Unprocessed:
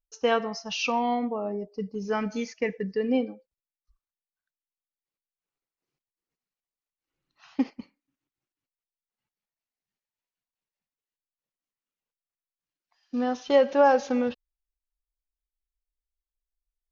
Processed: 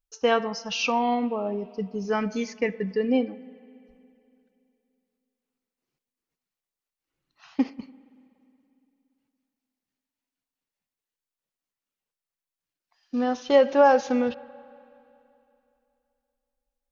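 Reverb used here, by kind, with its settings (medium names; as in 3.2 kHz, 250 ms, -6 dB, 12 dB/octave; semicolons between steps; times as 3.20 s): spring tank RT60 2.9 s, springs 47/58 ms, chirp 50 ms, DRR 19.5 dB; trim +2 dB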